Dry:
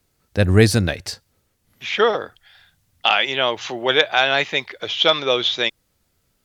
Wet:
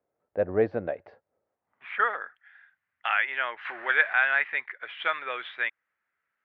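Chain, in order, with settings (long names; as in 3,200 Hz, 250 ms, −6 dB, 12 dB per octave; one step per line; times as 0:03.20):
0:03.65–0:04.13: converter with a step at zero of −25 dBFS
transistor ladder low-pass 2,700 Hz, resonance 25%
band-pass filter sweep 590 Hz → 1,700 Hz, 0:01.44–0:02.11
level +4 dB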